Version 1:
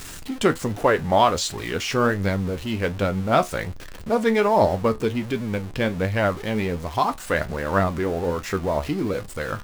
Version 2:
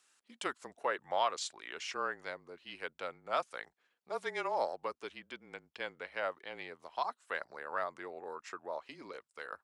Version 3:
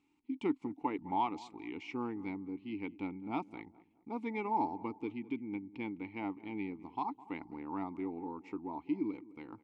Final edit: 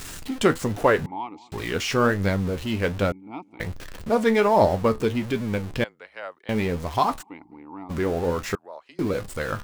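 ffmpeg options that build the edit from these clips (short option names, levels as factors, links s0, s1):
-filter_complex "[2:a]asplit=3[s0][s1][s2];[1:a]asplit=2[s3][s4];[0:a]asplit=6[s5][s6][s7][s8][s9][s10];[s5]atrim=end=1.062[s11];[s0]atrim=start=1.058:end=1.522[s12];[s6]atrim=start=1.518:end=3.122[s13];[s1]atrim=start=3.118:end=3.602[s14];[s7]atrim=start=3.598:end=5.842[s15];[s3]atrim=start=5.838:end=6.492[s16];[s8]atrim=start=6.488:end=7.23[s17];[s2]atrim=start=7.21:end=7.91[s18];[s9]atrim=start=7.89:end=8.552[s19];[s4]atrim=start=8.548:end=8.992[s20];[s10]atrim=start=8.988[s21];[s11][s12]acrossfade=d=0.004:c1=hsin:c2=hsin[s22];[s22][s13]acrossfade=d=0.004:c1=hsin:c2=hsin[s23];[s23][s14]acrossfade=d=0.004:c1=hsin:c2=hsin[s24];[s24][s15]acrossfade=d=0.004:c1=hsin:c2=hsin[s25];[s25][s16]acrossfade=d=0.004:c1=hsin:c2=hsin[s26];[s26][s17]acrossfade=d=0.004:c1=hsin:c2=hsin[s27];[s27][s18]acrossfade=d=0.02:c1=tri:c2=tri[s28];[s28][s19]acrossfade=d=0.02:c1=tri:c2=tri[s29];[s29][s20]acrossfade=d=0.004:c1=hsin:c2=hsin[s30];[s30][s21]acrossfade=d=0.004:c1=hsin:c2=hsin"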